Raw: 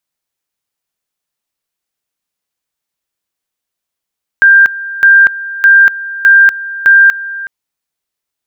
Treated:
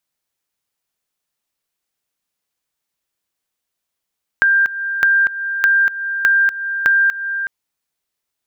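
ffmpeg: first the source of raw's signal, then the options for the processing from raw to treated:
-f lavfi -i "aevalsrc='pow(10,(-1.5-17*gte(mod(t,0.61),0.24))/20)*sin(2*PI*1590*t)':duration=3.05:sample_rate=44100"
-af "acompressor=threshold=-14dB:ratio=4"

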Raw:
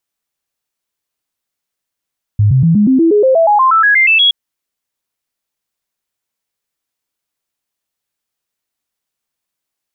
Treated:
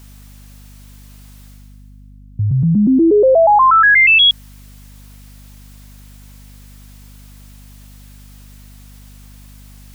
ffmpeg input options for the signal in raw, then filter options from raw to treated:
-f lavfi -i "aevalsrc='0.501*clip(min(mod(t,0.12),0.12-mod(t,0.12))/0.005,0,1)*sin(2*PI*104*pow(2,floor(t/0.12)/3)*mod(t,0.12))':duration=1.92:sample_rate=44100"
-af "highpass=frequency=180:poles=1,areverse,acompressor=mode=upward:threshold=-24dB:ratio=2.5,areverse,aeval=exprs='val(0)+0.0112*(sin(2*PI*50*n/s)+sin(2*PI*2*50*n/s)/2+sin(2*PI*3*50*n/s)/3+sin(2*PI*4*50*n/s)/4+sin(2*PI*5*50*n/s)/5)':channel_layout=same"

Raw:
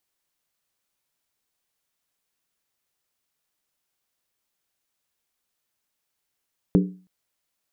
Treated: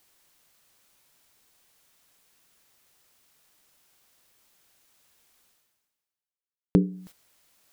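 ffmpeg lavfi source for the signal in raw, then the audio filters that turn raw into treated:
-f lavfi -i "aevalsrc='0.251*pow(10,-3*t/0.39)*sin(2*PI*184*t)+0.15*pow(10,-3*t/0.309)*sin(2*PI*293.3*t)+0.0891*pow(10,-3*t/0.267)*sin(2*PI*393*t)+0.0531*pow(10,-3*t/0.257)*sin(2*PI*422.5*t)+0.0316*pow(10,-3*t/0.239)*sin(2*PI*488.2*t)':duration=0.32:sample_rate=44100"
-af "agate=range=-24dB:threshold=-52dB:ratio=16:detection=peak,areverse,acompressor=mode=upward:threshold=-35dB:ratio=2.5,areverse"

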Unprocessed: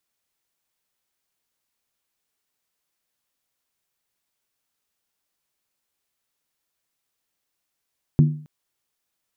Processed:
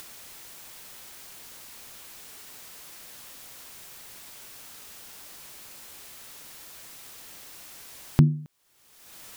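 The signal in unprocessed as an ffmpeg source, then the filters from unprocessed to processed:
-f lavfi -i "aevalsrc='0.376*pow(10,-3*t/0.46)*sin(2*PI*151*t)+0.141*pow(10,-3*t/0.364)*sin(2*PI*240.7*t)+0.0531*pow(10,-3*t/0.315)*sin(2*PI*322.5*t)+0.02*pow(10,-3*t/0.304)*sin(2*PI*346.7*t)+0.0075*pow(10,-3*t/0.282)*sin(2*PI*400.6*t)':duration=0.27:sample_rate=44100"
-af "acompressor=mode=upward:threshold=-19dB:ratio=2.5"

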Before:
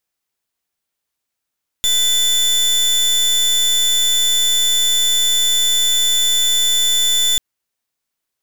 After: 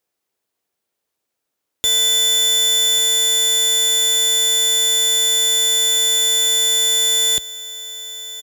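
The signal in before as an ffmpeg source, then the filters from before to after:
-f lavfi -i "aevalsrc='0.178*(2*lt(mod(3510*t,1),0.29)-1)':duration=5.54:sample_rate=44100"
-af "highpass=53,equalizer=frequency=440:width=0.81:gain=9,aecho=1:1:1142:0.168"

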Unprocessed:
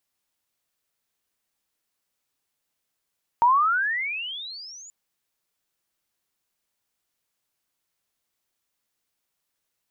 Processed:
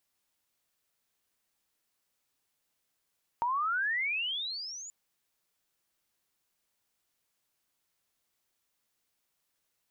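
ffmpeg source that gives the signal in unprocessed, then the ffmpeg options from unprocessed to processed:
-f lavfi -i "aevalsrc='pow(10,(-13.5-28*t/1.48)/20)*sin(2*PI*917*1.48/(35.5*log(2)/12)*(exp(35.5*log(2)/12*t/1.48)-1))':duration=1.48:sample_rate=44100"
-af "alimiter=limit=-22dB:level=0:latency=1,acompressor=threshold=-30dB:ratio=4"

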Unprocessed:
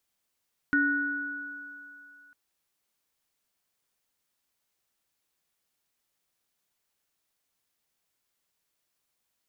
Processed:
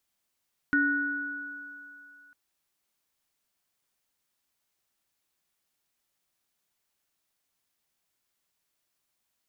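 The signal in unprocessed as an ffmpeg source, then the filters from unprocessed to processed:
-f lavfi -i "aevalsrc='0.0631*pow(10,-3*t/1.96)*sin(2*PI*285*t)+0.0841*pow(10,-3*t/2.94)*sin(2*PI*1470*t)+0.0141*pow(10,-3*t/1.12)*sin(2*PI*1840*t)':duration=1.6:sample_rate=44100"
-af "bandreject=frequency=480:width=12"

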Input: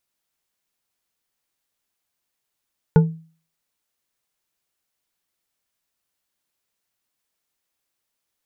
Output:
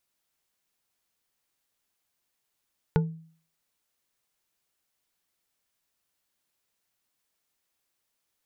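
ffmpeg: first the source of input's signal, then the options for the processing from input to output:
-f lavfi -i "aevalsrc='0.473*pow(10,-3*t/0.41)*sin(2*PI*162*t)+0.224*pow(10,-3*t/0.202)*sin(2*PI*446.6*t)+0.106*pow(10,-3*t/0.126)*sin(2*PI*875.4*t)+0.0501*pow(10,-3*t/0.089)*sin(2*PI*1447.1*t)':duration=0.89:sample_rate=44100"
-af "acompressor=threshold=-30dB:ratio=2"

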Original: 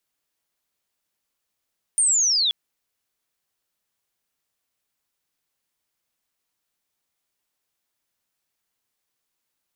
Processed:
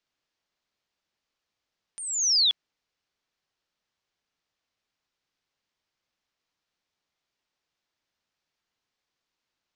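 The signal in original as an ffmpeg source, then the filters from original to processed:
-f lavfi -i "aevalsrc='pow(10,(-15.5-2.5*t/0.53)/20)*sin(2*PI*(9100*t-5800*t*t/(2*0.53)))':duration=0.53:sample_rate=44100"
-af "lowpass=frequency=5800:width=0.5412,lowpass=frequency=5800:width=1.3066"

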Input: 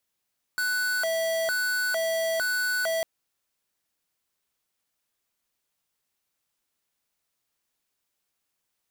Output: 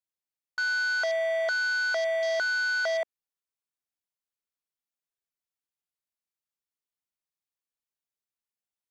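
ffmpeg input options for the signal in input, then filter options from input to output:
-f lavfi -i "aevalsrc='0.0473*(2*lt(mod((1072.5*t+417.5/1.1*(0.5-abs(mod(1.1*t,1)-0.5))),1),0.5)-1)':duration=2.45:sample_rate=44100"
-filter_complex "[0:a]acrossover=split=8900[link_01][link_02];[link_02]acompressor=threshold=-55dB:ratio=4:attack=1:release=60[link_03];[link_01][link_03]amix=inputs=2:normalize=0,afwtdn=0.0158"

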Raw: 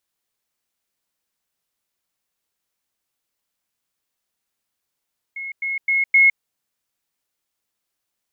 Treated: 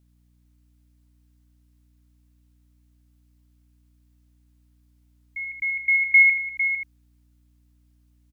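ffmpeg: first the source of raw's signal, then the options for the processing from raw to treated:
-f lavfi -i "aevalsrc='pow(10,(-27.5+6*floor(t/0.26))/20)*sin(2*PI*2170*t)*clip(min(mod(t,0.26),0.16-mod(t,0.26))/0.005,0,1)':duration=1.04:sample_rate=44100"
-filter_complex "[0:a]asplit=2[link_01][link_02];[link_02]aecho=0:1:80:0.355[link_03];[link_01][link_03]amix=inputs=2:normalize=0,aeval=exprs='val(0)+0.001*(sin(2*PI*60*n/s)+sin(2*PI*2*60*n/s)/2+sin(2*PI*3*60*n/s)/3+sin(2*PI*4*60*n/s)/4+sin(2*PI*5*60*n/s)/5)':channel_layout=same,asplit=2[link_04][link_05];[link_05]aecho=0:1:453:0.355[link_06];[link_04][link_06]amix=inputs=2:normalize=0"

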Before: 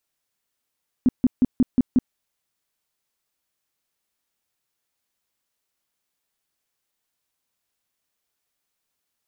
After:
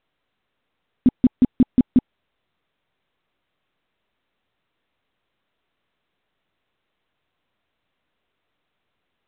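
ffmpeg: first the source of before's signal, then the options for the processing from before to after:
-f lavfi -i "aevalsrc='0.251*sin(2*PI*252*mod(t,0.18))*lt(mod(t,0.18),7/252)':duration=1.08:sample_rate=44100"
-af "tiltshelf=frequency=1300:gain=4,bandreject=frequency=850:width=14" -ar 8000 -c:a pcm_mulaw

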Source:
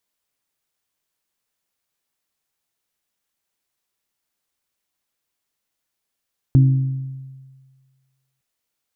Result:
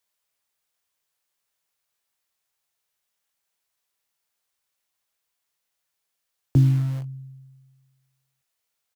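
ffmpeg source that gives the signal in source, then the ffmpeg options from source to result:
-f lavfi -i "aevalsrc='0.422*pow(10,-3*t/1.59)*sin(2*PI*133*t)+0.133*pow(10,-3*t/0.979)*sin(2*PI*266*t)+0.0422*pow(10,-3*t/0.861)*sin(2*PI*319.2*t)':duration=1.86:sample_rate=44100"
-filter_complex "[0:a]lowshelf=frequency=140:gain=-6,acrossover=split=200|350[link_01][link_02][link_03];[link_02]acrusher=bits=6:mix=0:aa=0.000001[link_04];[link_01][link_04][link_03]amix=inputs=3:normalize=0,asplit=2[link_05][link_06];[link_06]adelay=21,volume=-11dB[link_07];[link_05][link_07]amix=inputs=2:normalize=0"

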